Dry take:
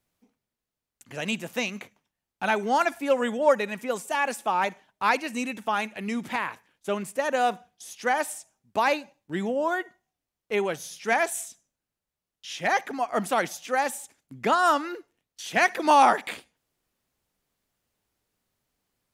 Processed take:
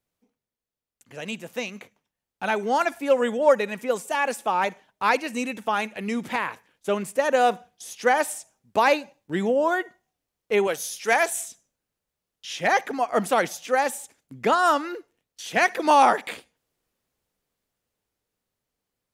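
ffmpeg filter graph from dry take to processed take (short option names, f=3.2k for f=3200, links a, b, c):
-filter_complex "[0:a]asettb=1/sr,asplit=3[a][b][c];[a]atrim=end=10.674[d];[b]atrim=start=10.67:end=11.27,asetpts=PTS-STARTPTS,afade=t=in:d=0.004:c=qsin,afade=t=out:st=0.596:d=0.004:c=qsin,highpass=f=380:p=1,highshelf=f=7k:g=9[e];[c]atrim=start=11.266[f];[d][e]acrossfade=d=0.004:c1=hsin:c2=qsin[g];[g][f]acrossfade=d=0.004:c1=qsin:c2=hsin,equalizer=f=480:t=o:w=0.42:g=4.5,dynaudnorm=f=350:g=13:m=11.5dB,volume=-5dB"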